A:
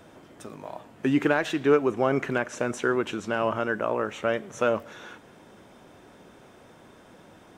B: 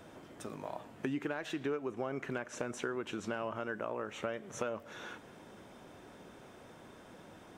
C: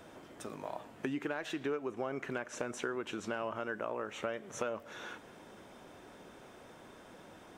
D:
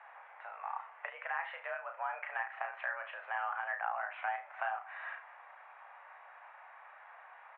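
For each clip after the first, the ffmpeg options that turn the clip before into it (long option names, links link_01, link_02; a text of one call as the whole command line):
ffmpeg -i in.wav -af "acompressor=threshold=-32dB:ratio=5,volume=-2.5dB" out.wav
ffmpeg -i in.wav -af "equalizer=frequency=120:width_type=o:width=2.2:gain=-4,volume=1dB" out.wav
ffmpeg -i in.wav -af "highpass=frequency=590:width_type=q:width=0.5412,highpass=frequency=590:width_type=q:width=1.307,lowpass=frequency=2200:width_type=q:width=0.5176,lowpass=frequency=2200:width_type=q:width=0.7071,lowpass=frequency=2200:width_type=q:width=1.932,afreqshift=190,aecho=1:1:34|73:0.531|0.188,volume=2.5dB" out.wav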